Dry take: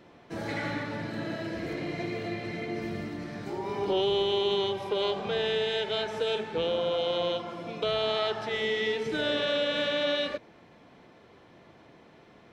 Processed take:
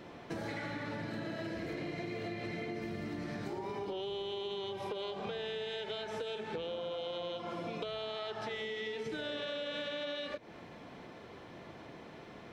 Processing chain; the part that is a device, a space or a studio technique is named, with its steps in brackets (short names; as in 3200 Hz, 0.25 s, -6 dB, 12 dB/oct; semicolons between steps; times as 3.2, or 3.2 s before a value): serial compression, peaks first (compressor, threshold -37 dBFS, peak gain reduction 12.5 dB; compressor 3:1, threshold -42 dBFS, peak gain reduction 6.5 dB); gain +4.5 dB